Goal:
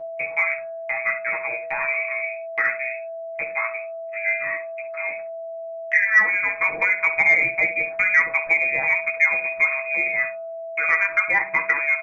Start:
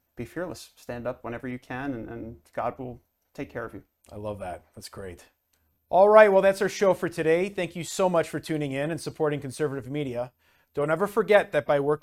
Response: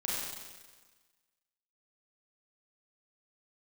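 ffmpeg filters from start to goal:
-af "lowpass=f=2.2k:t=q:w=0.5098,lowpass=f=2.2k:t=q:w=0.6013,lowpass=f=2.2k:t=q:w=0.9,lowpass=f=2.2k:t=q:w=2.563,afreqshift=-2600,agate=range=-24dB:threshold=-45dB:ratio=16:detection=peak,aeval=exprs='val(0)+0.00794*sin(2*PI*660*n/s)':c=same,acompressor=threshold=-23dB:ratio=8,aecho=1:1:6.2:0.69,aecho=1:1:15|66:0.531|0.282,acontrast=53,bandreject=f=97.18:t=h:w=4,bandreject=f=194.36:t=h:w=4,bandreject=f=291.54:t=h:w=4,bandreject=f=388.72:t=h:w=4,bandreject=f=485.9:t=h:w=4,bandreject=f=583.08:t=h:w=4,bandreject=f=680.26:t=h:w=4,bandreject=f=777.44:t=h:w=4,bandreject=f=874.62:t=h:w=4,bandreject=f=971.8:t=h:w=4,bandreject=f=1.06898k:t=h:w=4,bandreject=f=1.16616k:t=h:w=4,bandreject=f=1.26334k:t=h:w=4,bandreject=f=1.36052k:t=h:w=4,bandreject=f=1.4577k:t=h:w=4,bandreject=f=1.55488k:t=h:w=4,bandreject=f=1.65206k:t=h:w=4"

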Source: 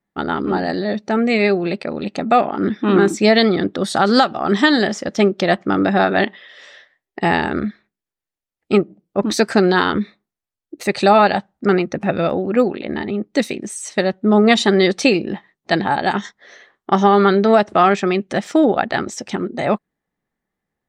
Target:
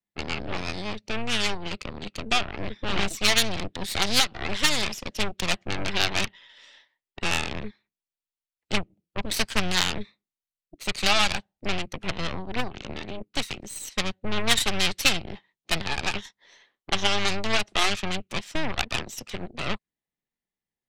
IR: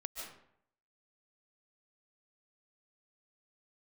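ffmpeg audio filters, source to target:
-filter_complex "[0:a]aeval=exprs='0.794*(cos(1*acos(clip(val(0)/0.794,-1,1)))-cos(1*PI/2))+0.251*(cos(3*acos(clip(val(0)/0.794,-1,1)))-cos(3*PI/2))+0.0794*(cos(4*acos(clip(val(0)/0.794,-1,1)))-cos(4*PI/2))+0.0501*(cos(5*acos(clip(val(0)/0.794,-1,1)))-cos(5*PI/2))+0.0631*(cos(8*acos(clip(val(0)/0.794,-1,1)))-cos(8*PI/2))':c=same,highshelf=f=2k:t=q:w=1.5:g=7.5,asplit=2[a][b];[b]asetrate=22050,aresample=44100,atempo=2,volume=-11dB[c];[a][c]amix=inputs=2:normalize=0,acrossover=split=170|710[d][e][f];[e]acompressor=threshold=-28dB:ratio=6[g];[d][g][f]amix=inputs=3:normalize=0,volume=-7dB"

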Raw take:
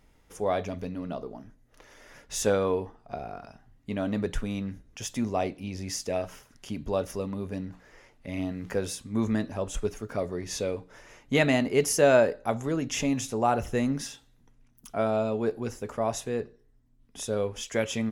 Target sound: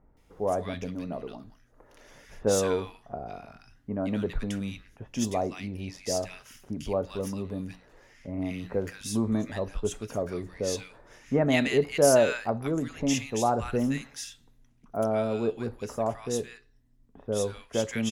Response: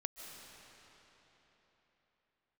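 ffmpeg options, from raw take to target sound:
-filter_complex "[0:a]acrossover=split=1400[a][b];[b]adelay=170[c];[a][c]amix=inputs=2:normalize=0"

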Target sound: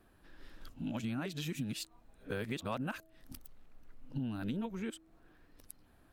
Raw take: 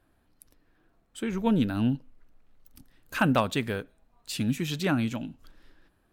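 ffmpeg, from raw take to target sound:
-af "areverse,bandreject=f=322.9:t=h:w=4,bandreject=f=645.8:t=h:w=4,acompressor=threshold=-38dB:ratio=10,volume=3dB"

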